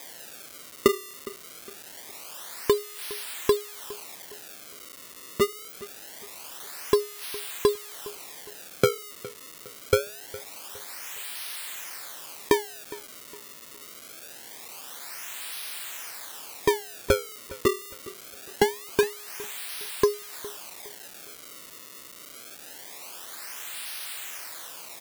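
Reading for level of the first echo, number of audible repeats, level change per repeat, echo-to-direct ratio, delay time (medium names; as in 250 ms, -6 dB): -19.0 dB, 2, -8.5 dB, -18.5 dB, 411 ms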